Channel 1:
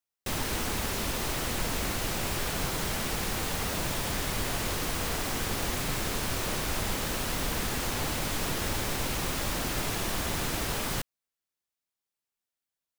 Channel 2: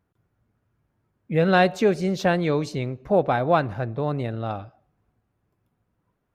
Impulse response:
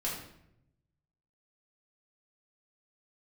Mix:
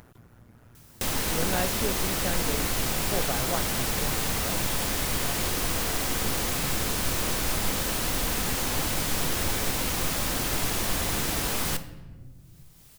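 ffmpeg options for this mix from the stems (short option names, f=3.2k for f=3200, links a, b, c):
-filter_complex "[0:a]adelay=750,volume=-0.5dB,asplit=2[a][b];[b]volume=-10.5dB[c];[1:a]tremolo=f=120:d=0.75,volume=-9.5dB[d];[2:a]atrim=start_sample=2205[e];[c][e]afir=irnorm=-1:irlink=0[f];[a][d][f]amix=inputs=3:normalize=0,highshelf=f=5.2k:g=5,acompressor=mode=upward:threshold=-28dB:ratio=2.5"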